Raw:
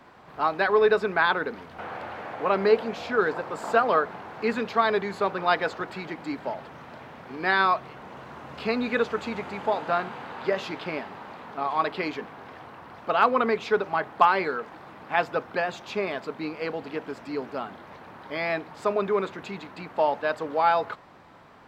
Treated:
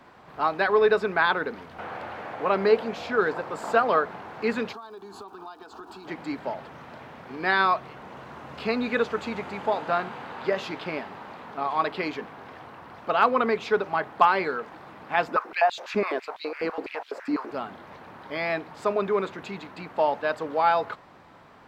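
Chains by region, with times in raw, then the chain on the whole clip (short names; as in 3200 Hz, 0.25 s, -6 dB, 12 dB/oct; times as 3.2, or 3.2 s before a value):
4.72–6.06 compressor 16:1, threshold -34 dBFS + fixed phaser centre 550 Hz, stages 6 + crackle 260/s -55 dBFS
15.28–17.51 bell 3300 Hz -5.5 dB 0.47 oct + stepped high-pass 12 Hz 240–3500 Hz
whole clip: dry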